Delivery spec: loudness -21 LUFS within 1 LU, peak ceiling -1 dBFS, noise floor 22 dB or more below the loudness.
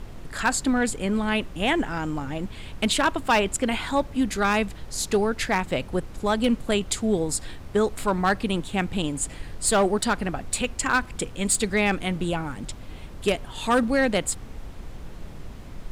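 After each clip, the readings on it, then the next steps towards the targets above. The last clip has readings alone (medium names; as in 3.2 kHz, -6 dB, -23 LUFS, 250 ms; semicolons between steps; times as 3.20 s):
clipped samples 0.5%; clipping level -14.0 dBFS; noise floor -40 dBFS; noise floor target -47 dBFS; loudness -25.0 LUFS; peak level -14.0 dBFS; loudness target -21.0 LUFS
-> clip repair -14 dBFS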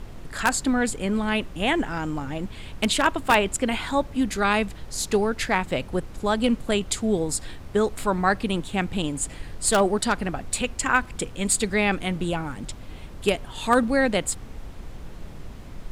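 clipped samples 0.0%; noise floor -40 dBFS; noise floor target -47 dBFS
-> noise print and reduce 7 dB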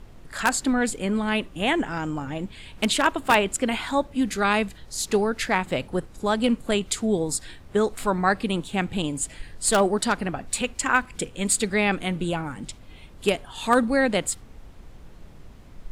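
noise floor -46 dBFS; noise floor target -47 dBFS
-> noise print and reduce 6 dB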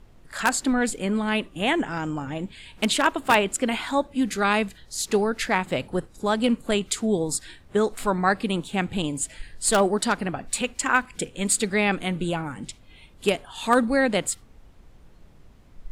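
noise floor -52 dBFS; loudness -24.5 LUFS; peak level -5.0 dBFS; loudness target -21.0 LUFS
-> trim +3.5 dB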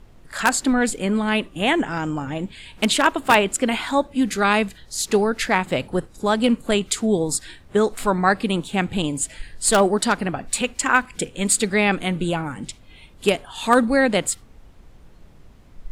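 loudness -21.0 LUFS; peak level -1.5 dBFS; noise floor -48 dBFS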